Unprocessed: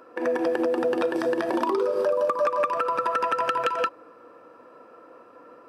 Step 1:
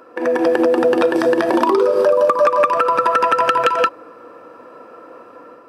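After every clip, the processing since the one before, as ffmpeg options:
ffmpeg -i in.wav -af "dynaudnorm=framelen=130:gausssize=5:maxgain=4dB,volume=5.5dB" out.wav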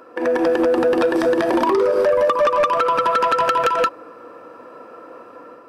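ffmpeg -i in.wav -af "asoftclip=type=tanh:threshold=-10.5dB" out.wav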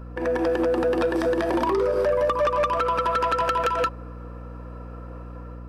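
ffmpeg -i in.wav -af "aeval=exprs='val(0)+0.0282*(sin(2*PI*60*n/s)+sin(2*PI*2*60*n/s)/2+sin(2*PI*3*60*n/s)/3+sin(2*PI*4*60*n/s)/4+sin(2*PI*5*60*n/s)/5)':channel_layout=same,volume=-5.5dB" out.wav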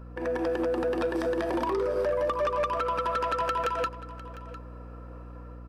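ffmpeg -i in.wav -af "aecho=1:1:703:0.141,volume=-5.5dB" out.wav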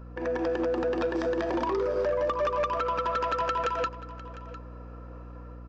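ffmpeg -i in.wav -af "aresample=16000,aresample=44100" out.wav

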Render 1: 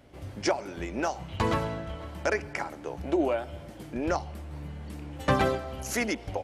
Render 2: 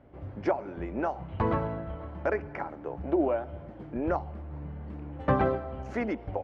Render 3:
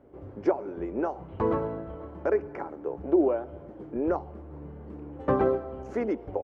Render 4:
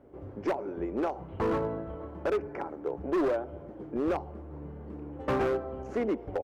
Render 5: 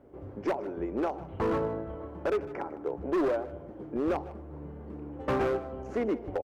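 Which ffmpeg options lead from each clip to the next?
ffmpeg -i in.wav -af "lowpass=1400" out.wav
ffmpeg -i in.wav -af "firequalizer=gain_entry='entry(130,0);entry(410,12);entry(630,3);entry(1100,4);entry(1900,-1);entry(4000,-1);entry(6600,5)':delay=0.05:min_phase=1,volume=-5dB" out.wav
ffmpeg -i in.wav -af "volume=24dB,asoftclip=hard,volume=-24dB" out.wav
ffmpeg -i in.wav -af "aecho=1:1:154:0.133" out.wav

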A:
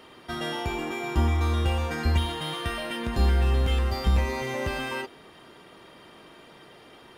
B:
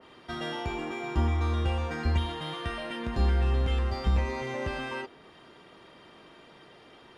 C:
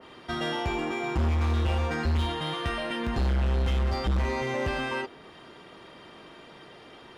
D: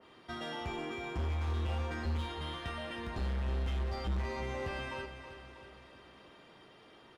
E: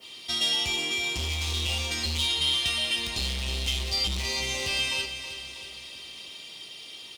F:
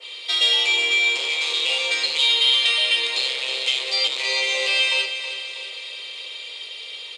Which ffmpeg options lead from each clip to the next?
ffmpeg -i in.wav -af "lowpass=7300,adynamicequalizer=threshold=0.00447:dfrequency=2300:dqfactor=0.7:tfrequency=2300:tqfactor=0.7:attack=5:release=100:ratio=0.375:range=1.5:mode=cutabove:tftype=highshelf,volume=-3dB" out.wav
ffmpeg -i in.wav -af "volume=27dB,asoftclip=hard,volume=-27dB,volume=4.5dB" out.wav
ffmpeg -i in.wav -filter_complex "[0:a]flanger=delay=9.4:depth=1.4:regen=-67:speed=0.44:shape=sinusoidal,asplit=2[link_01][link_02];[link_02]aecho=0:1:322|644|966|1288|1610|1932:0.299|0.167|0.0936|0.0524|0.0294|0.0164[link_03];[link_01][link_03]amix=inputs=2:normalize=0,volume=-5.5dB" out.wav
ffmpeg -i in.wav -af "aexciter=amount=6.6:drive=9.3:freq=2400,volume=1dB" out.wav
ffmpeg -i in.wav -af "highpass=frequency=460:width=0.5412,highpass=frequency=460:width=1.3066,equalizer=frequency=490:width_type=q:width=4:gain=9,equalizer=frequency=720:width_type=q:width=4:gain=-5,equalizer=frequency=2300:width_type=q:width=4:gain=6,equalizer=frequency=3900:width_type=q:width=4:gain=5,equalizer=frequency=5700:width_type=q:width=4:gain=-10,lowpass=frequency=8100:width=0.5412,lowpass=frequency=8100:width=1.3066,volume=6dB" out.wav

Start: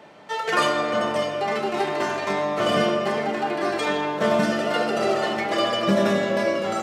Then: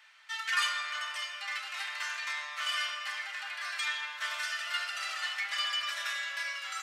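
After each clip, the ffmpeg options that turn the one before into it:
ffmpeg -i in.wav -af "highpass=frequency=1500:width=0.5412,highpass=frequency=1500:width=1.3066,volume=-3dB" out.wav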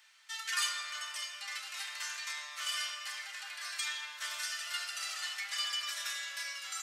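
ffmpeg -i in.wav -af "bass=frequency=250:gain=11,treble=frequency=4000:gain=13,volume=-7dB" out.wav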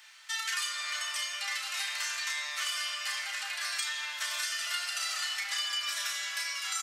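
ffmpeg -i in.wav -filter_complex "[0:a]afftfilt=real='re*(1-between(b*sr/4096,280,560))':imag='im*(1-between(b*sr/4096,280,560))':win_size=4096:overlap=0.75,acompressor=threshold=-39dB:ratio=6,asplit=2[link_01][link_02];[link_02]adelay=34,volume=-7dB[link_03];[link_01][link_03]amix=inputs=2:normalize=0,volume=8dB" out.wav

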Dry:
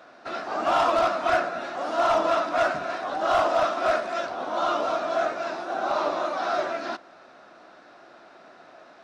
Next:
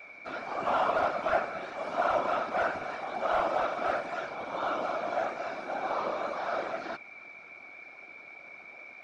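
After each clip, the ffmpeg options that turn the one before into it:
ffmpeg -i in.wav -filter_complex "[0:a]aeval=exprs='val(0)+0.01*sin(2*PI*2300*n/s)':channel_layout=same,afftfilt=real='hypot(re,im)*cos(2*PI*random(0))':imag='hypot(re,im)*sin(2*PI*random(1))':win_size=512:overlap=0.75,acrossover=split=3000[link_01][link_02];[link_02]acompressor=threshold=-53dB:ratio=4:attack=1:release=60[link_03];[link_01][link_03]amix=inputs=2:normalize=0" out.wav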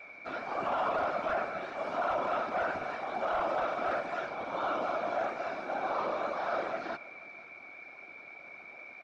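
ffmpeg -i in.wav -af "highshelf=frequency=6100:gain=-7.5,alimiter=limit=-23dB:level=0:latency=1:release=16,aecho=1:1:485:0.0891" out.wav

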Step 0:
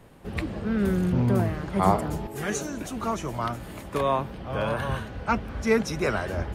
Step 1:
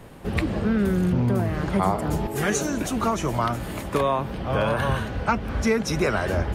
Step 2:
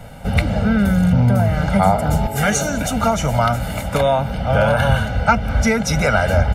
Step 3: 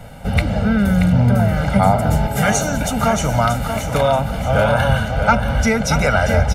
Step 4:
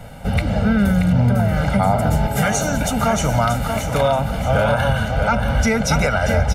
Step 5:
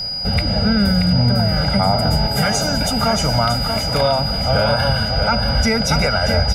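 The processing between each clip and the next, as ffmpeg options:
ffmpeg -i in.wav -af "acompressor=threshold=-26dB:ratio=6,volume=7.5dB" out.wav
ffmpeg -i in.wav -af "aecho=1:1:1.4:0.95,volume=4.5dB" out.wav
ffmpeg -i in.wav -af "aecho=1:1:631|1262|1893|2524:0.398|0.147|0.0545|0.0202" out.wav
ffmpeg -i in.wav -af "alimiter=limit=-7.5dB:level=0:latency=1:release=94" out.wav
ffmpeg -i in.wav -af "aeval=exprs='val(0)+0.0794*sin(2*PI*4900*n/s)':channel_layout=same" out.wav

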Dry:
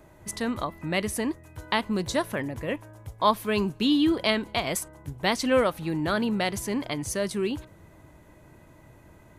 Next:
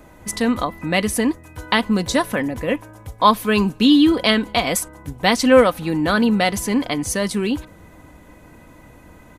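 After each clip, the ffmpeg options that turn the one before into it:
ffmpeg -i in.wav -af "aecho=1:1:4:0.43,volume=7.5dB" out.wav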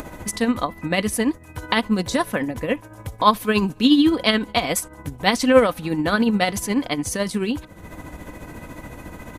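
ffmpeg -i in.wav -af "acompressor=mode=upward:threshold=-23dB:ratio=2.5,tremolo=f=14:d=0.51" out.wav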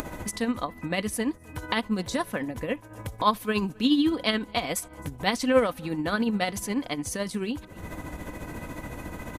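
ffmpeg -i in.wav -filter_complex "[0:a]asplit=2[link_01][link_02];[link_02]adelay=262.4,volume=-29dB,highshelf=frequency=4000:gain=-5.9[link_03];[link_01][link_03]amix=inputs=2:normalize=0,acompressor=mode=upward:threshold=-21dB:ratio=2.5,volume=-7dB" out.wav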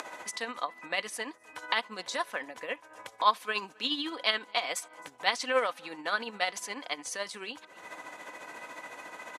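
ffmpeg -i in.wav -af "highpass=740,lowpass=7400" out.wav

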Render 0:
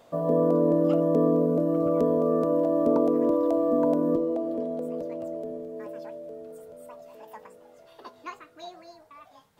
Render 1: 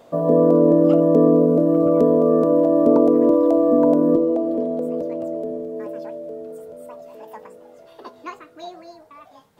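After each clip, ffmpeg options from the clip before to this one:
ffmpeg -i in.wav -af "equalizer=frequency=340:width=0.54:gain=5.5,volume=3dB" out.wav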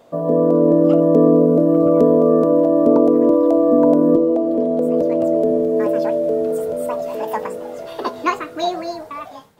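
ffmpeg -i in.wav -af "dynaudnorm=framelen=250:gausssize=5:maxgain=16.5dB,volume=-1dB" out.wav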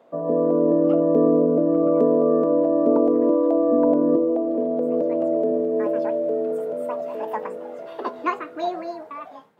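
ffmpeg -i in.wav -filter_complex "[0:a]acrossover=split=160 2800:gain=0.0794 1 0.224[link_01][link_02][link_03];[link_01][link_02][link_03]amix=inputs=3:normalize=0,volume=-4.5dB" out.wav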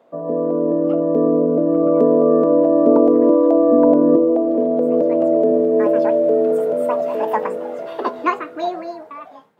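ffmpeg -i in.wav -af "dynaudnorm=framelen=280:gausssize=13:maxgain=11.5dB" out.wav

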